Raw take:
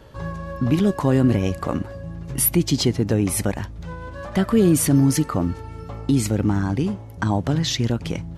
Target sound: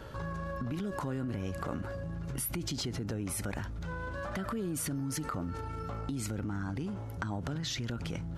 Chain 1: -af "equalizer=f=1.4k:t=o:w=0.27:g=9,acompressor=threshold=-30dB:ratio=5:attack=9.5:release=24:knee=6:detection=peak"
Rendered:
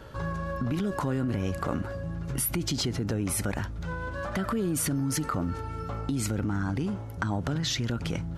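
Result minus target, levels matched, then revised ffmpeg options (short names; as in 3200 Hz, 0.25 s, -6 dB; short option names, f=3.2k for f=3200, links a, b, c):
compressor: peak gain reduction -7 dB
-af "equalizer=f=1.4k:t=o:w=0.27:g=9,acompressor=threshold=-38.5dB:ratio=5:attack=9.5:release=24:knee=6:detection=peak"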